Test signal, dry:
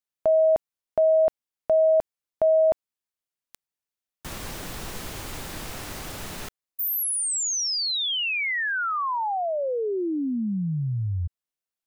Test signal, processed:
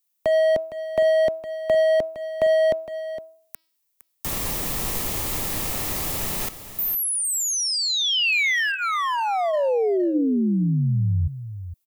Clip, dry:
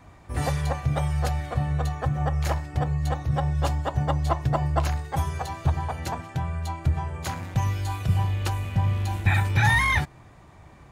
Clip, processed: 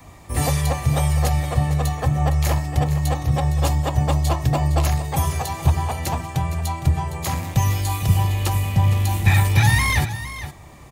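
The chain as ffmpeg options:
-filter_complex "[0:a]aemphasis=mode=production:type=50kf,bandreject=f=1.5k:w=6.1,bandreject=f=321.9:t=h:w=4,bandreject=f=643.8:t=h:w=4,bandreject=f=965.7:t=h:w=4,bandreject=f=1.2876k:t=h:w=4,bandreject=f=1.6095k:t=h:w=4,bandreject=f=1.9314k:t=h:w=4,bandreject=f=2.2533k:t=h:w=4,bandreject=f=2.5752k:t=h:w=4,bandreject=f=2.8971k:t=h:w=4,bandreject=f=3.219k:t=h:w=4,bandreject=f=3.5409k:t=h:w=4,bandreject=f=3.8628k:t=h:w=4,bandreject=f=4.1847k:t=h:w=4,bandreject=f=4.5066k:t=h:w=4,bandreject=f=4.8285k:t=h:w=4,bandreject=f=5.1504k:t=h:w=4,bandreject=f=5.4723k:t=h:w=4,acrossover=split=210|520|2400[a][b][c][d];[c]asoftclip=type=hard:threshold=-29.5dB[e];[d]acompressor=threshold=-29dB:ratio=10:attack=2.7:release=99:detection=rms[f];[a][b][e][f]amix=inputs=4:normalize=0,aecho=1:1:461:0.237,volume=5.5dB"

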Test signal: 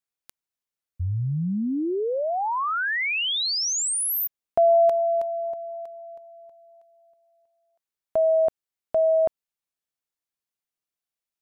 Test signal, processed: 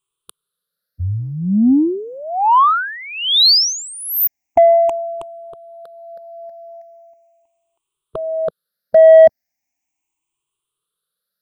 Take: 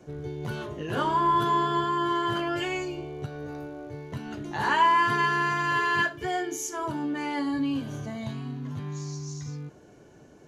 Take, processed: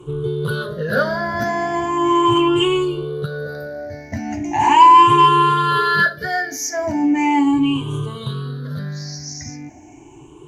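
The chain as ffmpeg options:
-af "afftfilt=real='re*pow(10,23/40*sin(2*PI*(0.66*log(max(b,1)*sr/1024/100)/log(2)-(0.38)*(pts-256)/sr)))':imag='im*pow(10,23/40*sin(2*PI*(0.66*log(max(b,1)*sr/1024/100)/log(2)-(0.38)*(pts-256)/sr)))':win_size=1024:overlap=0.75,acontrast=24"

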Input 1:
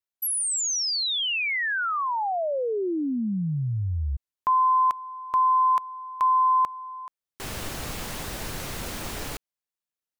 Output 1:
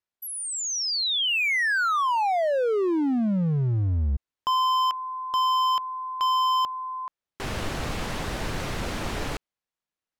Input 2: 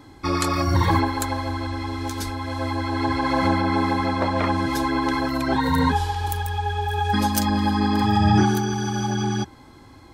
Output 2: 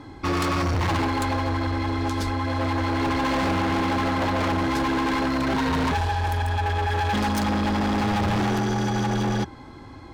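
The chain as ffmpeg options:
-af "aemphasis=mode=reproduction:type=50fm,acontrast=53,asoftclip=type=hard:threshold=-20dB,volume=-1.5dB"

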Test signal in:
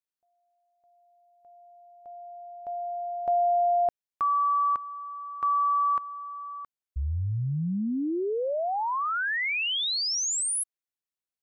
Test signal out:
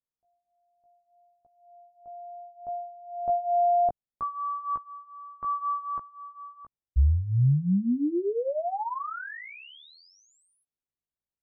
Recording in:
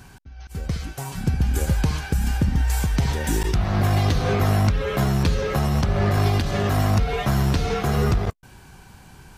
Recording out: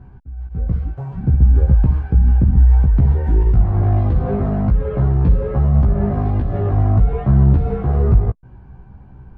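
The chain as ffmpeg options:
-af "lowpass=1k,lowshelf=f=190:g=11,flanger=delay=15:depth=2.2:speed=0.67,volume=1.5dB"

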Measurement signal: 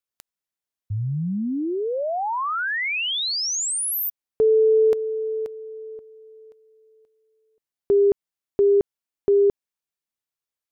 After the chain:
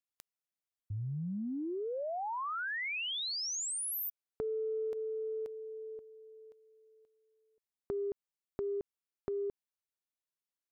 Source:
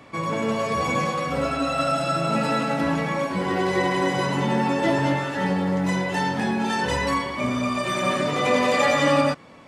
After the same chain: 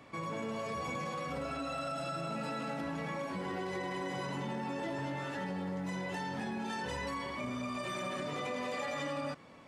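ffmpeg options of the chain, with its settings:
-af "acompressor=threshold=-27dB:ratio=6:attack=4.2:release=83:knee=6:detection=peak,volume=-8dB"

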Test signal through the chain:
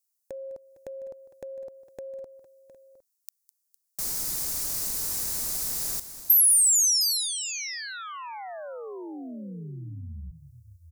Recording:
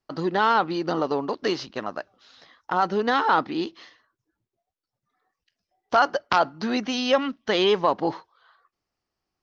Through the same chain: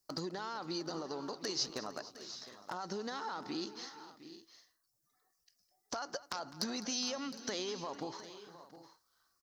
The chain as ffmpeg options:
-filter_complex "[0:a]alimiter=limit=-19dB:level=0:latency=1:release=55,acompressor=threshold=-31dB:ratio=6,asoftclip=type=hard:threshold=-23dB,aexciter=amount=6.2:drive=6.8:freq=4.5k,asplit=2[a][b];[b]aecho=0:1:205|457|711|760:0.141|0.112|0.178|0.119[c];[a][c]amix=inputs=2:normalize=0,volume=-6.5dB"

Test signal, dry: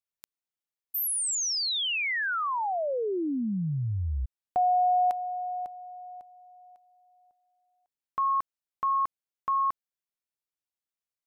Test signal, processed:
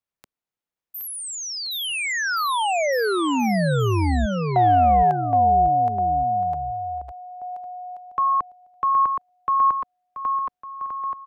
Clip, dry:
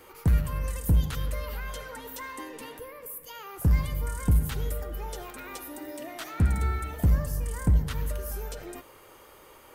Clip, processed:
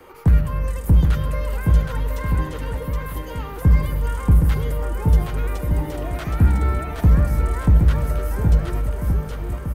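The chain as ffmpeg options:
-filter_complex "[0:a]highshelf=f=2.8k:g=-11.5,aecho=1:1:770|1424|1981|2454|2856:0.631|0.398|0.251|0.158|0.1,acrossover=split=240|480|6000[a][b][c][d];[b]volume=34dB,asoftclip=hard,volume=-34dB[e];[a][e][c][d]amix=inputs=4:normalize=0,volume=7.5dB"

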